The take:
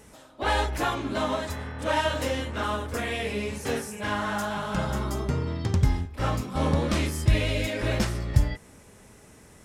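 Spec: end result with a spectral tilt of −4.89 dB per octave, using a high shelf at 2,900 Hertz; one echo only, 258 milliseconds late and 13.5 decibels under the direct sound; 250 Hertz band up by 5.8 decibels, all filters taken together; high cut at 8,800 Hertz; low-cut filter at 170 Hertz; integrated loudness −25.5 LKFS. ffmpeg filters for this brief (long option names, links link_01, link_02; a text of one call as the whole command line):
ffmpeg -i in.wav -af "highpass=170,lowpass=8800,equalizer=frequency=250:width_type=o:gain=8.5,highshelf=frequency=2900:gain=4,aecho=1:1:258:0.211,volume=1dB" out.wav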